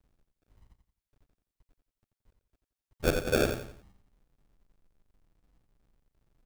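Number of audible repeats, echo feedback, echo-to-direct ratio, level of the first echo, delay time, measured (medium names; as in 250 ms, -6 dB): 4, 35%, -7.0 dB, -7.5 dB, 87 ms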